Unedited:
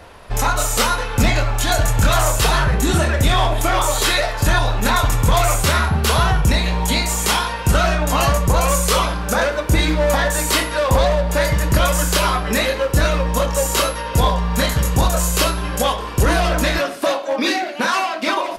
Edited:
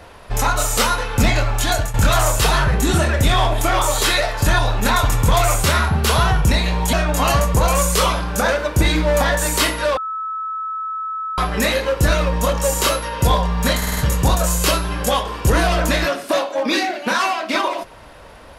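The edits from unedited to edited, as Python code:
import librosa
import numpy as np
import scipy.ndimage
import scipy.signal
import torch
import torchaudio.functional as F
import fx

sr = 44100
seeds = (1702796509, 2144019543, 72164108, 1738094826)

y = fx.edit(x, sr, fx.fade_out_to(start_s=1.61, length_s=0.33, curve='qsin', floor_db=-13.5),
    fx.cut(start_s=6.93, length_s=0.93),
    fx.bleep(start_s=10.9, length_s=1.41, hz=1300.0, db=-22.5),
    fx.stutter(start_s=14.7, slice_s=0.05, count=5), tone=tone)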